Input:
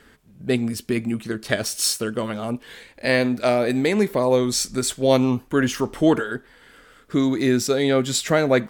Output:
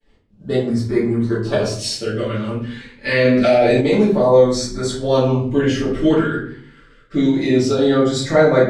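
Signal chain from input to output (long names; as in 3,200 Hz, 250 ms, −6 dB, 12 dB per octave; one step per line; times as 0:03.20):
mains-hum notches 60/120/180/240 Hz
downward expander −45 dBFS
0:00.73–0:01.79: thirty-one-band graphic EQ 400 Hz +6 dB, 1,000 Hz +9 dB, 3,150 Hz −5 dB
auto-filter notch sine 0.27 Hz 640–2,800 Hz
high-frequency loss of the air 98 metres
convolution reverb RT60 0.55 s, pre-delay 3 ms, DRR −10.5 dB
0:03.25–0:03.81: envelope flattener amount 70%
level −5.5 dB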